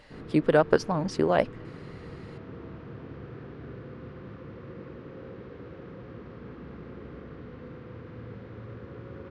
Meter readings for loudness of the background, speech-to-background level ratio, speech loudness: −43.5 LKFS, 18.0 dB, −25.5 LKFS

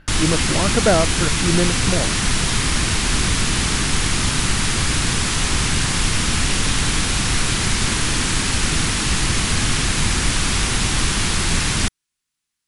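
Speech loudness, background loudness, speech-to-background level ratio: −22.0 LKFS, −19.0 LKFS, −3.0 dB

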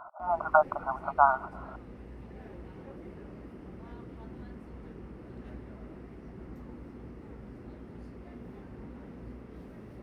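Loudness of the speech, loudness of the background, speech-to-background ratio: −27.5 LKFS, −47.0 LKFS, 19.5 dB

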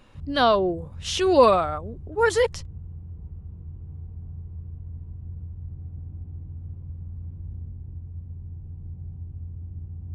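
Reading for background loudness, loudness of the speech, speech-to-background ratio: −39.0 LKFS, −21.5 LKFS, 17.5 dB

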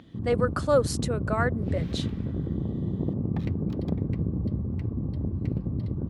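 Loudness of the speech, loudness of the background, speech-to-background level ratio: −28.5 LKFS, −30.0 LKFS, 1.5 dB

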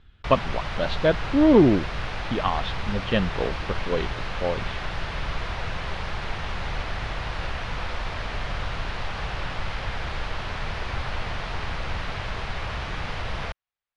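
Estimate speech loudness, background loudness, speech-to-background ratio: −24.0 LKFS, −32.0 LKFS, 8.0 dB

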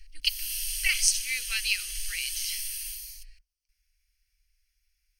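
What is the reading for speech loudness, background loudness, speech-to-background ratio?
−28.0 LKFS, −33.0 LKFS, 5.0 dB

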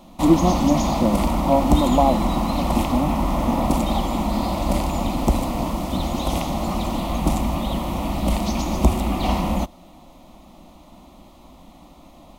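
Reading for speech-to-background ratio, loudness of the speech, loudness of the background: 1.0 dB, −22.0 LKFS, −23.0 LKFS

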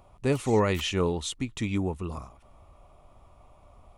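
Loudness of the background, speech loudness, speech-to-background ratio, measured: −47.0 LKFS, −28.0 LKFS, 19.0 dB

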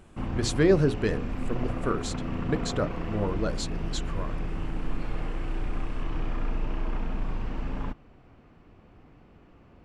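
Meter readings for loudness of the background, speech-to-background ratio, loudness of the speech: −34.5 LKFS, 5.0 dB, −29.5 LKFS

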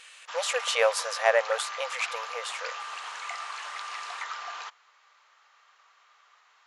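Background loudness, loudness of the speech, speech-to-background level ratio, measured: −36.5 LKFS, −28.5 LKFS, 8.0 dB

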